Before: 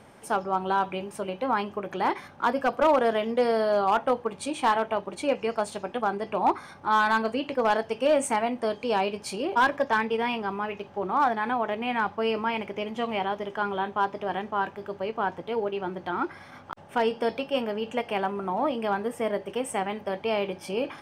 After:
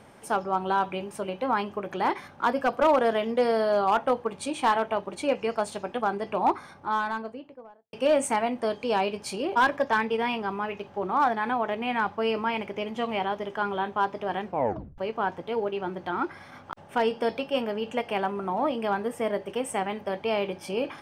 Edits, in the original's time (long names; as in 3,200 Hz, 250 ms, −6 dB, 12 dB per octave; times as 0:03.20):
0:06.34–0:07.93: fade out and dull
0:14.44: tape stop 0.54 s